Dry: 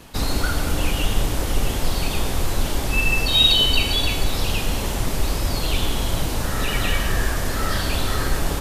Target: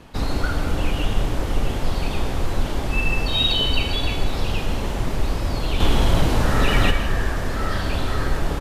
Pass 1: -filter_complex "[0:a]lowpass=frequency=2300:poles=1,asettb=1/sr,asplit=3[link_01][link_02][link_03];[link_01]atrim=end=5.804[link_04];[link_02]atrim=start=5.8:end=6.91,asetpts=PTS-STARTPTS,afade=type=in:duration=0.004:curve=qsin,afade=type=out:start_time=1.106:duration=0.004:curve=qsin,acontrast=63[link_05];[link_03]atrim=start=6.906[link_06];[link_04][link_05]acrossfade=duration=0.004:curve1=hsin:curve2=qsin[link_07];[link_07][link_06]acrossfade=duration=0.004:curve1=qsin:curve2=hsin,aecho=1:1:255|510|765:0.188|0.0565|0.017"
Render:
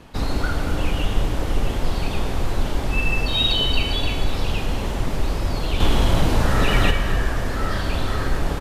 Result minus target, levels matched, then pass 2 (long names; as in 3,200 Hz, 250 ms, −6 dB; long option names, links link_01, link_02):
echo 98 ms late
-filter_complex "[0:a]lowpass=frequency=2300:poles=1,asettb=1/sr,asplit=3[link_01][link_02][link_03];[link_01]atrim=end=5.804[link_04];[link_02]atrim=start=5.8:end=6.91,asetpts=PTS-STARTPTS,afade=type=in:duration=0.004:curve=qsin,afade=type=out:start_time=1.106:duration=0.004:curve=qsin,acontrast=63[link_05];[link_03]atrim=start=6.906[link_06];[link_04][link_05]acrossfade=duration=0.004:curve1=hsin:curve2=qsin[link_07];[link_07][link_06]acrossfade=duration=0.004:curve1=qsin:curve2=hsin,aecho=1:1:157|314|471:0.188|0.0565|0.017"